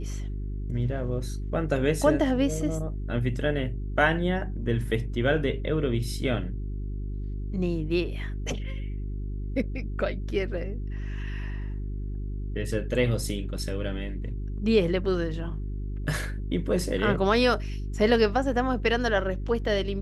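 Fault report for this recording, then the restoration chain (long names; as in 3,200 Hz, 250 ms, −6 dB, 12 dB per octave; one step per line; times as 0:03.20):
mains hum 50 Hz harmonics 8 −32 dBFS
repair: hum removal 50 Hz, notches 8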